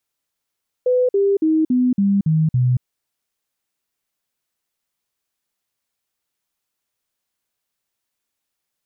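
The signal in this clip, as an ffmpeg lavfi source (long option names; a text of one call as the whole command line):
ffmpeg -f lavfi -i "aevalsrc='0.224*clip(min(mod(t,0.28),0.23-mod(t,0.28))/0.005,0,1)*sin(2*PI*501*pow(2,-floor(t/0.28)/3)*mod(t,0.28))':duration=1.96:sample_rate=44100" out.wav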